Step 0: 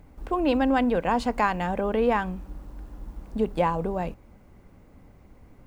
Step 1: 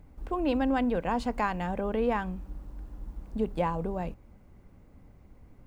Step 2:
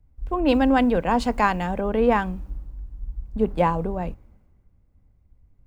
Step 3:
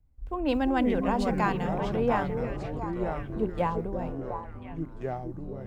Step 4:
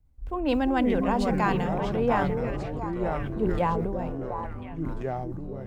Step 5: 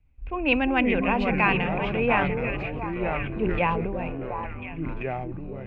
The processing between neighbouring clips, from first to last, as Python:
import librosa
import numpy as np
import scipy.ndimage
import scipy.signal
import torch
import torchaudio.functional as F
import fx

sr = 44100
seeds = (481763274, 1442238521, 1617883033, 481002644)

y1 = fx.low_shelf(x, sr, hz=220.0, db=5.0)
y1 = F.gain(torch.from_numpy(y1), -6.0).numpy()
y2 = fx.band_widen(y1, sr, depth_pct=70)
y2 = F.gain(torch.from_numpy(y2), 7.5).numpy()
y3 = fx.echo_stepped(y2, sr, ms=347, hz=350.0, octaves=1.4, feedback_pct=70, wet_db=-4)
y3 = fx.echo_pitch(y3, sr, ms=235, semitones=-5, count=3, db_per_echo=-6.0)
y3 = F.gain(torch.from_numpy(y3), -7.5).numpy()
y4 = fx.sustainer(y3, sr, db_per_s=24.0)
y4 = F.gain(torch.from_numpy(y4), 1.0).numpy()
y5 = fx.lowpass_res(y4, sr, hz=2500.0, q=9.5)